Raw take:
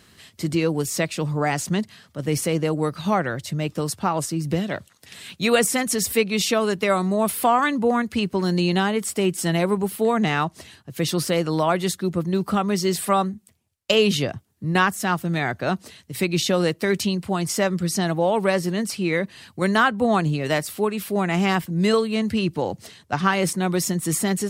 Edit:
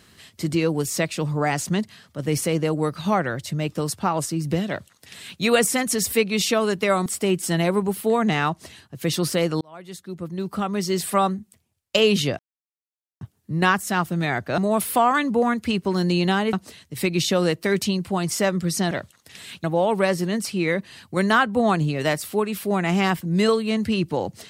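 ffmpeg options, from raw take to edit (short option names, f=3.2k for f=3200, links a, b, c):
-filter_complex "[0:a]asplit=8[a][b][c][d][e][f][g][h];[a]atrim=end=7.062[i];[b]atrim=start=9.008:end=11.56,asetpts=PTS-STARTPTS,afade=t=out:st=2.548:d=0.004:c=hsin[j];[c]atrim=start=11.56:end=14.34,asetpts=PTS-STARTPTS,afade=t=in:d=1.58,afade=t=out:st=2.776:d=0.004:c=hsin,apad=pad_dur=0.82[k];[d]atrim=start=14.34:end=15.712,asetpts=PTS-STARTPTS,afade=t=in:d=0.004:c=hsin[l];[e]atrim=start=7.058:end=9.012[m];[f]atrim=start=15.708:end=18.092[n];[g]atrim=start=4.678:end=5.412[o];[h]atrim=start=18.088[p];[j][k][l]concat=n=3:v=0:a=1[q];[i][q]acrossfade=d=0.004:c1=hsin:c2=hsin[r];[r][m]acrossfade=d=0.004:c1=hsin:c2=hsin[s];[s][n]acrossfade=d=0.004:c1=hsin:c2=hsin[t];[t][o]acrossfade=d=0.004:c1=hsin:c2=hsin[u];[u][p]acrossfade=d=0.004:c1=hsin:c2=hsin"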